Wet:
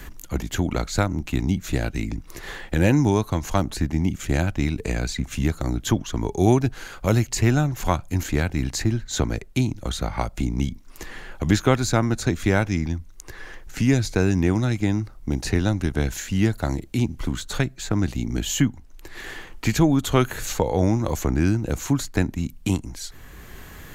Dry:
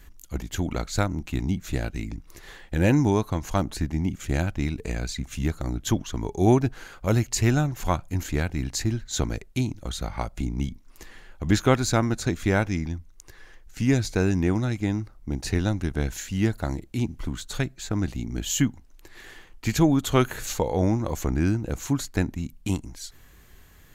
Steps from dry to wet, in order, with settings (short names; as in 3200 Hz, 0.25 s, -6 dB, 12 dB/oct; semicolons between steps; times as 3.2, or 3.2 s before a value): three-band squash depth 40%; gain +3 dB